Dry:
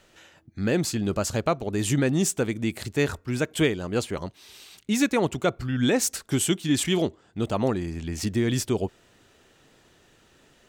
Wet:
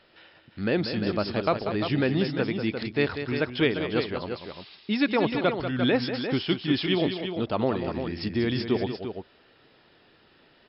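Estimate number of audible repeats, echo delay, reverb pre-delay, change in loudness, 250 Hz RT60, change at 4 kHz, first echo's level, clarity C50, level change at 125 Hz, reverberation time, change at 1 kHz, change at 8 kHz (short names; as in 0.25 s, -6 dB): 2, 0.19 s, none, -1.0 dB, none, +1.0 dB, -9.0 dB, none, -3.0 dB, none, +1.0 dB, under -40 dB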